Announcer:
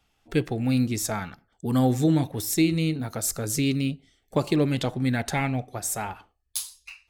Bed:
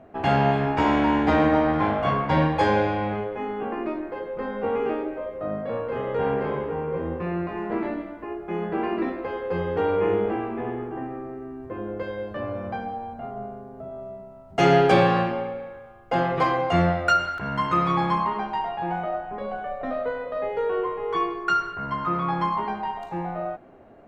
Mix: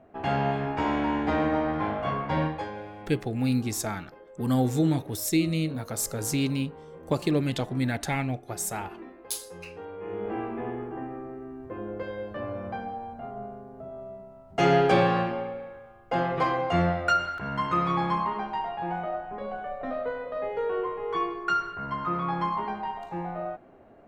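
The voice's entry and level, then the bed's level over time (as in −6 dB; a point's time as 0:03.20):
2.75 s, −2.5 dB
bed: 0:02.47 −6 dB
0:02.71 −17.5 dB
0:09.98 −17.5 dB
0:10.39 −3.5 dB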